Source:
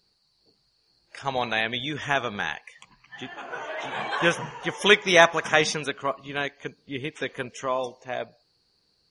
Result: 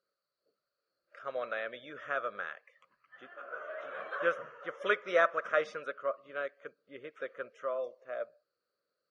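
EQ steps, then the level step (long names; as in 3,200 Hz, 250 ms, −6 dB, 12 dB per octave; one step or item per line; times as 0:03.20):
pair of resonant band-passes 860 Hz, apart 1.2 octaves
0.0 dB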